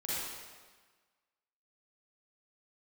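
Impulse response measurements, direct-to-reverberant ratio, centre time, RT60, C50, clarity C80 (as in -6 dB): -9.5 dB, 0.128 s, 1.4 s, -6.5 dB, -1.5 dB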